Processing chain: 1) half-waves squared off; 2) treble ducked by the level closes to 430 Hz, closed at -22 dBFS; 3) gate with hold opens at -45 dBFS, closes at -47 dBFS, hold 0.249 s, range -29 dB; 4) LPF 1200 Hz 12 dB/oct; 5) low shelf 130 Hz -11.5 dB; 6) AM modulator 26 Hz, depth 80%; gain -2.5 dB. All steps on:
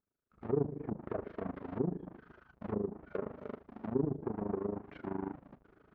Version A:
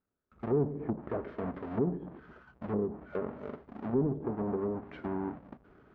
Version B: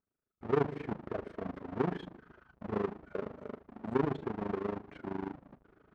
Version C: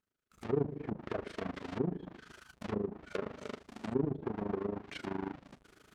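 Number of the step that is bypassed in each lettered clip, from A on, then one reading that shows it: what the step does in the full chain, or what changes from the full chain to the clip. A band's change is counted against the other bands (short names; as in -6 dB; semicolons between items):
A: 6, momentary loudness spread change +2 LU; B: 2, 2 kHz band +7.0 dB; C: 4, 2 kHz band +7.0 dB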